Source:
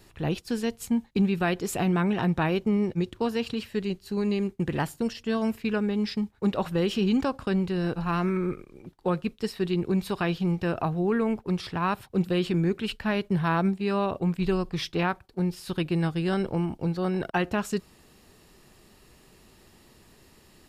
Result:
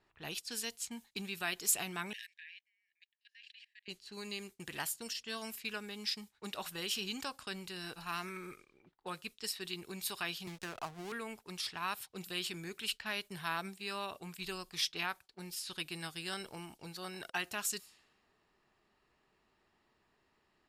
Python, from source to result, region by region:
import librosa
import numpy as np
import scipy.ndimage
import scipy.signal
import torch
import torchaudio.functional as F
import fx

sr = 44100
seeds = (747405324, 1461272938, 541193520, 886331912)

y = fx.chain(x, sr, fx.brickwall_highpass(low_hz=1600.0),
    fx.level_steps(step_db=22), at=(2.13, 3.88))
y = fx.chain(y, sr, fx.lowpass(hz=2700.0, slope=12),
    fx.backlash(play_db=-32.0),
    fx.band_squash(depth_pct=100), at=(10.47, 11.12))
y = fx.notch(y, sr, hz=520.0, q=12.0)
y = fx.env_lowpass(y, sr, base_hz=1100.0, full_db=-25.5)
y = F.preemphasis(torch.from_numpy(y), 0.97).numpy()
y = y * librosa.db_to_amplitude(5.5)